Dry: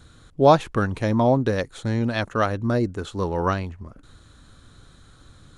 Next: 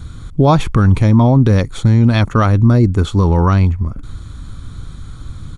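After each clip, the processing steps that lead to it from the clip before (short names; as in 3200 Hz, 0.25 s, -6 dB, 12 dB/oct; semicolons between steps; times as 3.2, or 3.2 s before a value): low shelf 210 Hz +11.5 dB; comb 0.9 ms, depth 33%; maximiser +10 dB; gain -1 dB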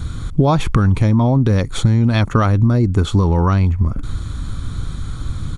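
compressor, threshold -16 dBFS, peak gain reduction 10 dB; gain +5.5 dB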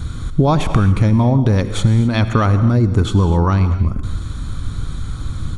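reverb, pre-delay 68 ms, DRR 10 dB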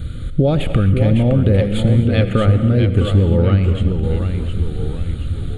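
small resonant body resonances 530/1200/2900 Hz, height 11 dB, ringing for 35 ms; echoes that change speed 0.52 s, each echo -1 st, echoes 3, each echo -6 dB; fixed phaser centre 2500 Hz, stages 4; gain -1 dB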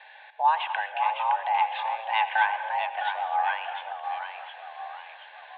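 mistuned SSB +320 Hz 530–2700 Hz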